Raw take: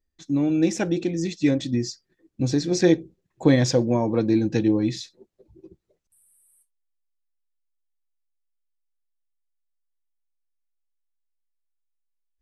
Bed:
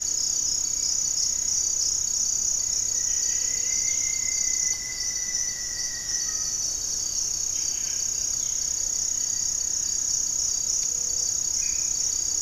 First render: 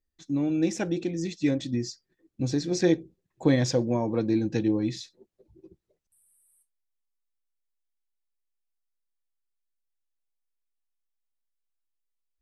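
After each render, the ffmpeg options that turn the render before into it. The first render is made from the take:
-af "volume=-4.5dB"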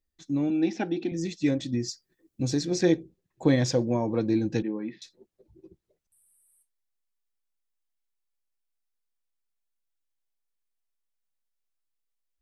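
-filter_complex "[0:a]asettb=1/sr,asplit=3[a][b][c];[a]atrim=end=0.504[d];[b]atrim=start=0.5:end=1.12,asetpts=PTS-STARTPTS,afade=t=in:d=0.004:c=qsin,afade=t=out:st=0.616:d=0.004:c=qsin,highpass=230,equalizer=f=250:t=q:w=4:g=9,equalizer=f=540:t=q:w=4:g=-9,equalizer=f=790:t=q:w=4:g=7,equalizer=f=1.1k:t=q:w=4:g=-6,lowpass=f=4.6k:w=0.5412,lowpass=f=4.6k:w=1.3066[e];[c]atrim=start=1.116[f];[d][e]acrossfade=d=0.004:c1=hsin:c2=qsin[g];[g][f]acrossfade=d=0.004:c1=qsin:c2=hsin,asettb=1/sr,asplit=3[h][i][j];[h]atrim=end=1.884[k];[i]atrim=start=1.88:end=2.65,asetpts=PTS-STARTPTS,afade=t=in:d=0.004:c=qsin,afade=t=out:st=0.766:d=0.004:c=qsin,highshelf=f=6.5k:g=9.5[l];[j]atrim=start=2.646[m];[k][l]acrossfade=d=0.004:c1=hsin:c2=qsin[n];[n][m]acrossfade=d=0.004:c1=qsin:c2=hsin,asettb=1/sr,asplit=3[o][p][q];[o]atrim=end=4.624[r];[p]atrim=start=4.62:end=5.02,asetpts=PTS-STARTPTS,afade=t=in:d=0.004:c=qsin,afade=t=out:st=0.396:d=0.004:c=qsin,highpass=f=220:w=0.5412,highpass=f=220:w=1.3066,equalizer=f=320:t=q:w=4:g=-7,equalizer=f=510:t=q:w=4:g=-5,equalizer=f=730:t=q:w=4:g=-8,lowpass=f=2.2k:w=0.5412,lowpass=f=2.2k:w=1.3066[s];[q]atrim=start=5.016[t];[r][s]acrossfade=d=0.004:c1=hsin:c2=qsin[u];[u][t]acrossfade=d=0.004:c1=qsin:c2=hsin"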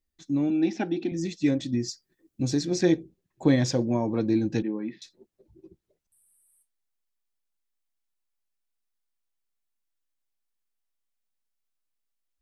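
-af "equalizer=f=250:t=o:w=0.77:g=2,bandreject=f=490:w=15"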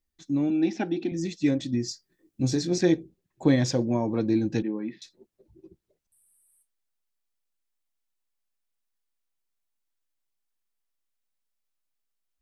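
-filter_complex "[0:a]asettb=1/sr,asplit=3[a][b][c];[a]atrim=end=1.884[d];[b]atrim=start=1.88:end=2.78,asetpts=PTS-STARTPTS,afade=t=in:d=0.004:c=qsin,afade=t=out:st=0.896:d=0.004:c=qsin,asplit=2[e][f];[f]adelay=23,volume=-7.5dB[g];[e][g]amix=inputs=2:normalize=0,atrim=end_sample=39690[h];[c]atrim=start=2.776[i];[d][h]acrossfade=d=0.004:c1=hsin:c2=qsin[j];[j][i]acrossfade=d=0.004:c1=qsin:c2=hsin"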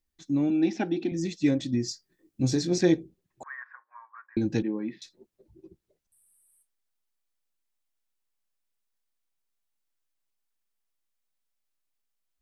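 -filter_complex "[0:a]asettb=1/sr,asplit=3[a][b][c];[a]atrim=end=3.434[d];[b]atrim=start=3.43:end=4.37,asetpts=PTS-STARTPTS,afade=t=in:d=0.004:c=qsin,afade=t=out:st=0.936:d=0.004:c=qsin,asuperpass=centerf=1400:order=8:qfactor=1.8[e];[c]atrim=start=4.366[f];[d][e]acrossfade=d=0.004:c1=hsin:c2=qsin[g];[g][f]acrossfade=d=0.004:c1=qsin:c2=hsin"

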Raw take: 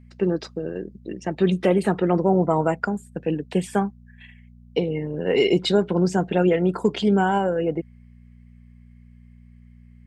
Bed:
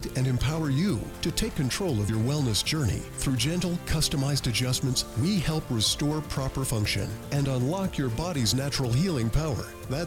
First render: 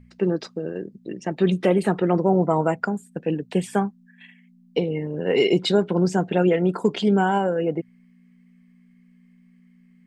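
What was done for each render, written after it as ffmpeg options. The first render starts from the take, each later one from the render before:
-af "bandreject=f=60:t=h:w=4,bandreject=f=120:t=h:w=4"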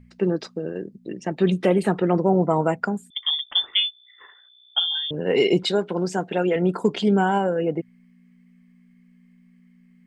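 -filter_complex "[0:a]asettb=1/sr,asplit=3[a][b][c];[a]atrim=end=3.104[d];[b]atrim=start=3.1:end=5.11,asetpts=PTS-STARTPTS,afade=t=in:d=0.004:c=qsin,afade=t=out:st=2.006:d=0.004:c=qsin,lowpass=f=3.1k:t=q:w=0.5098,lowpass=f=3.1k:t=q:w=0.6013,lowpass=f=3.1k:t=q:w=0.9,lowpass=f=3.1k:t=q:w=2.563,afreqshift=-3700[e];[c]atrim=start=5.106[f];[d][e]acrossfade=d=0.004:c1=hsin:c2=qsin[g];[g][f]acrossfade=d=0.004:c1=qsin:c2=hsin,asettb=1/sr,asplit=3[h][i][j];[h]atrim=end=5.634[k];[i]atrim=start=5.63:end=6.56,asetpts=PTS-STARTPTS,afade=t=in:d=0.004:c=qsin,afade=t=out:st=0.926:d=0.004:c=qsin,lowshelf=f=220:g=-11.5[l];[j]atrim=start=6.556[m];[k][l]acrossfade=d=0.004:c1=hsin:c2=qsin[n];[n][m]acrossfade=d=0.004:c1=qsin:c2=hsin"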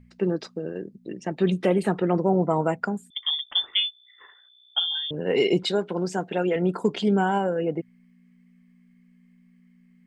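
-af "volume=-2.5dB"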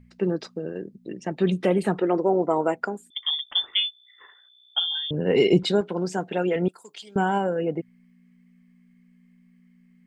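-filter_complex "[0:a]asettb=1/sr,asplit=3[a][b][c];[a]atrim=end=2.004[d];[b]atrim=start=2:end=3.47,asetpts=PTS-STARTPTS,afade=t=in:d=0.004:c=qsin,afade=t=out:st=1.466:d=0.004:c=qsin,lowshelf=f=240:t=q:w=1.5:g=-8[e];[c]atrim=start=3.466[f];[d][e]acrossfade=d=0.004:c1=hsin:c2=qsin[g];[g][f]acrossfade=d=0.004:c1=qsin:c2=hsin,asettb=1/sr,asplit=3[h][i][j];[h]atrim=end=5.074[k];[i]atrim=start=5.07:end=5.81,asetpts=PTS-STARTPTS,afade=t=in:d=0.004:c=qsin,afade=t=out:st=0.736:d=0.004:c=qsin,lowshelf=f=240:g=9.5[l];[j]atrim=start=5.806[m];[k][l]acrossfade=d=0.004:c1=hsin:c2=qsin[n];[n][m]acrossfade=d=0.004:c1=qsin:c2=hsin,asettb=1/sr,asplit=3[o][p][q];[o]atrim=end=6.684[r];[p]atrim=start=6.68:end=7.16,asetpts=PTS-STARTPTS,afade=t=in:d=0.004:c=qsin,afade=t=out:st=0.476:d=0.004:c=qsin,aderivative[s];[q]atrim=start=7.156[t];[r][s]acrossfade=d=0.004:c1=hsin:c2=qsin[u];[u][t]acrossfade=d=0.004:c1=qsin:c2=hsin"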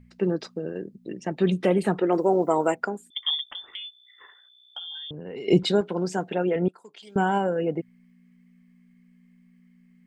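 -filter_complex "[0:a]asettb=1/sr,asplit=3[a][b][c];[a]atrim=end=2.124[d];[b]atrim=start=2.12:end=2.75,asetpts=PTS-STARTPTS,afade=t=in:d=0.004:c=qsin,afade=t=out:st=0.626:d=0.004:c=qsin,aemphasis=mode=production:type=75kf[e];[c]atrim=start=2.746[f];[d][e]acrossfade=d=0.004:c1=hsin:c2=qsin[g];[g][f]acrossfade=d=0.004:c1=qsin:c2=hsin,asettb=1/sr,asplit=3[h][i][j];[h]atrim=end=3.544[k];[i]atrim=start=3.54:end=5.48,asetpts=PTS-STARTPTS,afade=t=in:d=0.004:c=qsin,afade=t=out:st=1.936:d=0.004:c=qsin,acompressor=threshold=-35dB:ratio=5:attack=3.2:release=140:knee=1:detection=peak[l];[j]atrim=start=5.476[m];[k][l]acrossfade=d=0.004:c1=hsin:c2=qsin[n];[n][m]acrossfade=d=0.004:c1=qsin:c2=hsin,asettb=1/sr,asplit=3[o][p][q];[o]atrim=end=6.344[r];[p]atrim=start=6.34:end=7.03,asetpts=PTS-STARTPTS,afade=t=in:d=0.004:c=qsin,afade=t=out:st=0.686:d=0.004:c=qsin,lowpass=f=1.7k:p=1[s];[q]atrim=start=7.026[t];[r][s]acrossfade=d=0.004:c1=hsin:c2=qsin[u];[u][t]acrossfade=d=0.004:c1=qsin:c2=hsin"

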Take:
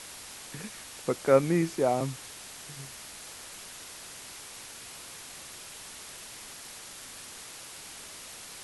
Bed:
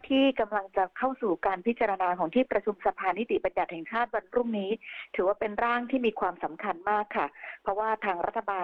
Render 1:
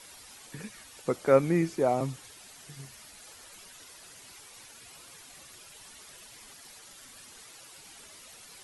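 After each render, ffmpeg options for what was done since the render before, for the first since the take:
-af "afftdn=nr=10:nf=-46"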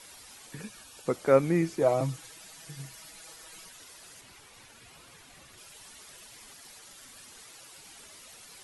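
-filter_complex "[0:a]asettb=1/sr,asplit=3[a][b][c];[a]atrim=end=0.614[d];[b]atrim=start=0.61:end=1.06,asetpts=PTS-STARTPTS,afade=t=in:d=0.004:c=qsin,afade=t=out:st=0.446:d=0.004:c=qsin,asuperstop=centerf=2000:order=4:qfactor=4.7[e];[c]atrim=start=1.056[f];[d][e]acrossfade=d=0.004:c1=hsin:c2=qsin[g];[g][f]acrossfade=d=0.004:c1=qsin:c2=hsin,asettb=1/sr,asplit=3[h][i][j];[h]atrim=end=1.814[k];[i]atrim=start=1.81:end=3.69,asetpts=PTS-STARTPTS,afade=t=in:d=0.004:c=qsin,afade=t=out:st=1.876:d=0.004:c=qsin,aecho=1:1:6.2:0.65,atrim=end_sample=82908[l];[j]atrim=start=3.686[m];[k][l]acrossfade=d=0.004:c1=hsin:c2=qsin[n];[n][m]acrossfade=d=0.004:c1=qsin:c2=hsin,asettb=1/sr,asplit=3[o][p][q];[o]atrim=end=4.214[r];[p]atrim=start=4.21:end=5.58,asetpts=PTS-STARTPTS,afade=t=in:d=0.004:c=qsin,afade=t=out:st=1.366:d=0.004:c=qsin,bass=f=250:g=4,treble=f=4k:g=-6[s];[q]atrim=start=5.576[t];[r][s]acrossfade=d=0.004:c1=hsin:c2=qsin[u];[u][t]acrossfade=d=0.004:c1=qsin:c2=hsin"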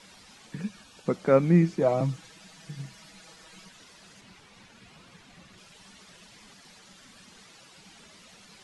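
-af "lowpass=5.8k,equalizer=f=190:w=2.7:g=13.5"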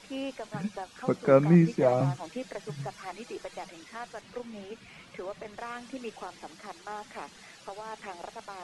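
-filter_complex "[1:a]volume=-12.5dB[a];[0:a][a]amix=inputs=2:normalize=0"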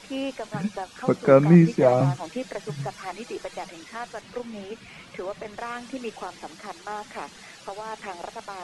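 -af "volume=5.5dB,alimiter=limit=-3dB:level=0:latency=1"

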